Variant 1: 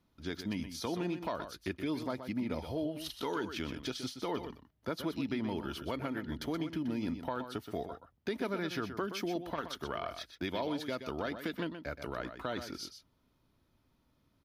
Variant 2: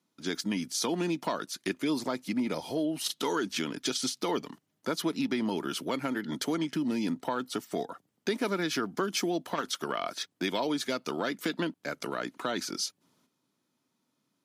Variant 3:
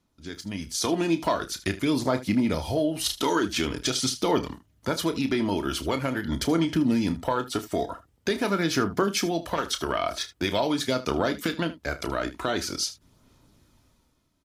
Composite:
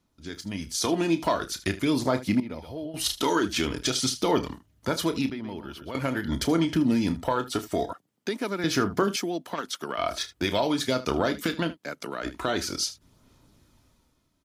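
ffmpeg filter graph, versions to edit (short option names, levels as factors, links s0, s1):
-filter_complex "[0:a]asplit=2[s0][s1];[1:a]asplit=3[s2][s3][s4];[2:a]asplit=6[s5][s6][s7][s8][s9][s10];[s5]atrim=end=2.402[s11];[s0]atrim=start=2.398:end=2.942[s12];[s6]atrim=start=2.938:end=5.302[s13];[s1]atrim=start=5.298:end=5.952[s14];[s7]atrim=start=5.948:end=7.932[s15];[s2]atrim=start=7.928:end=8.642[s16];[s8]atrim=start=8.638:end=9.162[s17];[s3]atrim=start=9.158:end=9.982[s18];[s9]atrim=start=9.978:end=11.78[s19];[s4]atrim=start=11.72:end=12.27[s20];[s10]atrim=start=12.21[s21];[s11][s12]acrossfade=d=0.004:c1=hsin:c2=hsin[s22];[s22][s13]acrossfade=d=0.004:c1=hsin:c2=hsin[s23];[s23][s14]acrossfade=d=0.004:c1=hsin:c2=hsin[s24];[s24][s15]acrossfade=d=0.004:c1=hsin:c2=hsin[s25];[s25][s16]acrossfade=d=0.004:c1=hsin:c2=hsin[s26];[s26][s17]acrossfade=d=0.004:c1=hsin:c2=hsin[s27];[s27][s18]acrossfade=d=0.004:c1=hsin:c2=hsin[s28];[s28][s19]acrossfade=d=0.004:c1=hsin:c2=hsin[s29];[s29][s20]acrossfade=d=0.06:c1=tri:c2=tri[s30];[s30][s21]acrossfade=d=0.06:c1=tri:c2=tri"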